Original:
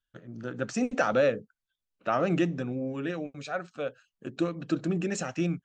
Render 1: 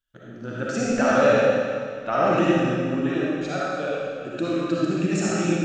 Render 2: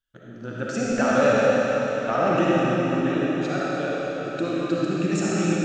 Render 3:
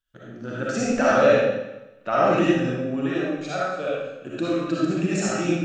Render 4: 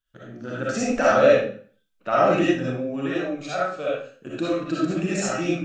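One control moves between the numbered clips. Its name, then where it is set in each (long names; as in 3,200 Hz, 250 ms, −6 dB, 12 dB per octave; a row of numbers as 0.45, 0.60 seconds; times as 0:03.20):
comb and all-pass reverb, RT60: 2.1, 4.6, 0.98, 0.45 seconds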